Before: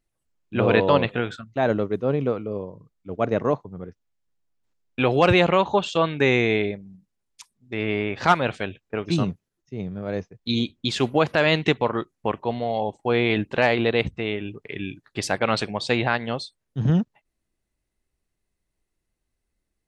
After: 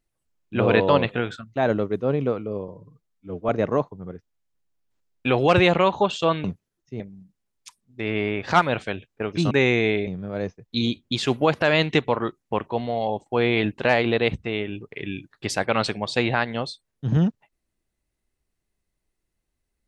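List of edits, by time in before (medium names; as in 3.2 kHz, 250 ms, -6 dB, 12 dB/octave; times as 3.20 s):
2.68–3.22 s: stretch 1.5×
6.17–6.73 s: swap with 9.24–9.80 s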